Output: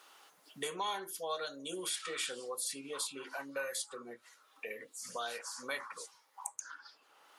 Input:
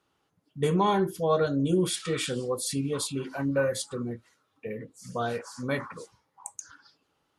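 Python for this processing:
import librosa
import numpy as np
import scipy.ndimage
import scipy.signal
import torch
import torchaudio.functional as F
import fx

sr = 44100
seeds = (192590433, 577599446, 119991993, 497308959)

y = scipy.signal.sosfilt(scipy.signal.butter(2, 710.0, 'highpass', fs=sr, output='sos'), x)
y = fx.high_shelf(y, sr, hz=5200.0, db=5.5)
y = fx.band_squash(y, sr, depth_pct=70)
y = y * librosa.db_to_amplitude(-6.0)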